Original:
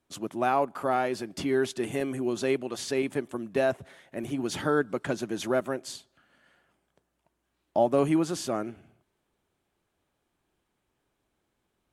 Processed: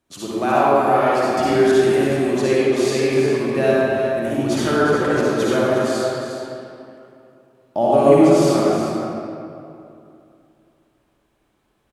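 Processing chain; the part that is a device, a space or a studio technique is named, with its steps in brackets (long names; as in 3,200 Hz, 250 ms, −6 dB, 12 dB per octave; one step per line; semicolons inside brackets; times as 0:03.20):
cave (single-tap delay 358 ms −9.5 dB; convolution reverb RT60 2.7 s, pre-delay 49 ms, DRR −7.5 dB)
level +2.5 dB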